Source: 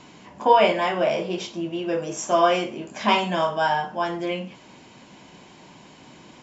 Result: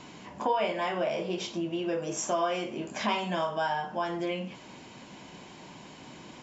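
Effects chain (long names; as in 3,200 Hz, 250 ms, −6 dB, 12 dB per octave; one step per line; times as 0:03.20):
downward compressor 2.5 to 1, threshold −30 dBFS, peak gain reduction 13 dB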